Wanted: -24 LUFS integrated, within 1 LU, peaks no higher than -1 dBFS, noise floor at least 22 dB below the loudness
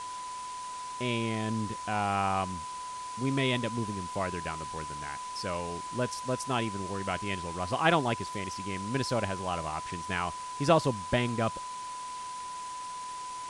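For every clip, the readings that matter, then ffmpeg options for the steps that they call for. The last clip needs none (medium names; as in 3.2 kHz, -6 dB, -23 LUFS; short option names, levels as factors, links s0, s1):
steady tone 1 kHz; tone level -37 dBFS; noise floor -40 dBFS; noise floor target -55 dBFS; loudness -32.5 LUFS; peak level -10.0 dBFS; loudness target -24.0 LUFS
-> -af "bandreject=f=1000:w=30"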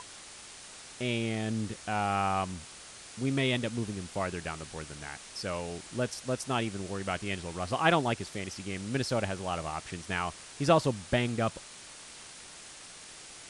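steady tone not found; noise floor -49 dBFS; noise floor target -54 dBFS
-> -af "afftdn=nr=6:nf=-49"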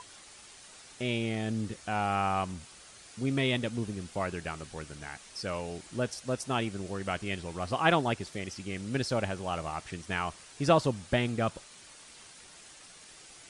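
noise floor -53 dBFS; noise floor target -54 dBFS
-> -af "afftdn=nr=6:nf=-53"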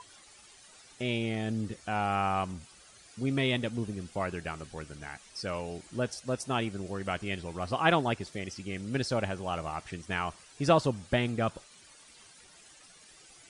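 noise floor -56 dBFS; loudness -32.5 LUFS; peak level -10.0 dBFS; loudness target -24.0 LUFS
-> -af "volume=2.66"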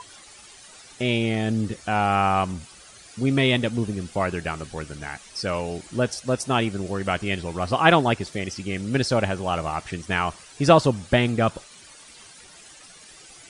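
loudness -24.0 LUFS; peak level -1.5 dBFS; noise floor -48 dBFS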